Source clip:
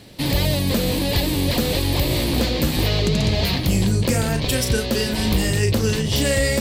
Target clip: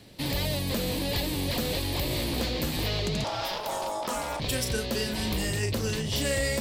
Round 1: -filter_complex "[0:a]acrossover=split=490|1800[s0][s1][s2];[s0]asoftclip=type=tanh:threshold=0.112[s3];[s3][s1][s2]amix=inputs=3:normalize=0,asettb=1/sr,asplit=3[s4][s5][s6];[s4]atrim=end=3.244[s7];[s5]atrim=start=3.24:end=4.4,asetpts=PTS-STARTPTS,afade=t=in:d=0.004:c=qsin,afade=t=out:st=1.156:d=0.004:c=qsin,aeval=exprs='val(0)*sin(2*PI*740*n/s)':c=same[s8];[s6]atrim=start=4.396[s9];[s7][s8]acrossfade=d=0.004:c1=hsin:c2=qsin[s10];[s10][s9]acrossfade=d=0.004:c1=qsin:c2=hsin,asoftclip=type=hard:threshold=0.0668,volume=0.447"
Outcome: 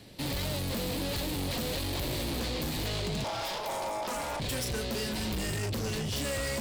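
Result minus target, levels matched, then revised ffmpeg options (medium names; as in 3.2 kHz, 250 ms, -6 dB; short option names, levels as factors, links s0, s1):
hard clipper: distortion +32 dB
-filter_complex "[0:a]acrossover=split=490|1800[s0][s1][s2];[s0]asoftclip=type=tanh:threshold=0.112[s3];[s3][s1][s2]amix=inputs=3:normalize=0,asettb=1/sr,asplit=3[s4][s5][s6];[s4]atrim=end=3.244[s7];[s5]atrim=start=3.24:end=4.4,asetpts=PTS-STARTPTS,afade=t=in:d=0.004:c=qsin,afade=t=out:st=1.156:d=0.004:c=qsin,aeval=exprs='val(0)*sin(2*PI*740*n/s)':c=same[s8];[s6]atrim=start=4.396[s9];[s7][s8]acrossfade=d=0.004:c1=hsin:c2=qsin[s10];[s10][s9]acrossfade=d=0.004:c1=qsin:c2=hsin,asoftclip=type=hard:threshold=0.251,volume=0.447"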